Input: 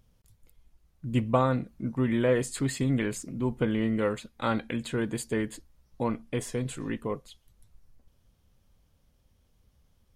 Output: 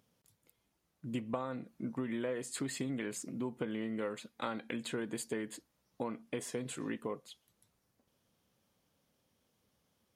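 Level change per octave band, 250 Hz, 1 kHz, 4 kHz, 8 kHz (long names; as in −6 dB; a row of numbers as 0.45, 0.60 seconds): −9.5, −11.0, −6.0, −4.5 decibels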